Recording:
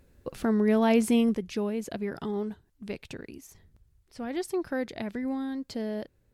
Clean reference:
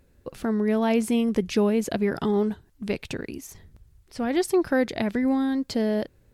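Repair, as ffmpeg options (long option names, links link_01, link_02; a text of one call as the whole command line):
ffmpeg -i in.wav -af "asetnsamples=nb_out_samples=441:pad=0,asendcmd='1.34 volume volume 8.5dB',volume=0dB" out.wav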